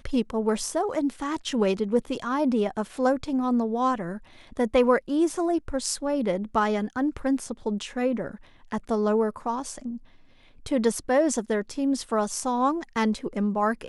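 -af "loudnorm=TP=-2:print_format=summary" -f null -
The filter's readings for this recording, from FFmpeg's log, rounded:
Input Integrated:    -26.1 LUFS
Input True Peak:      -9.1 dBTP
Input LRA:             3.0 LU
Input Threshold:     -36.4 LUFS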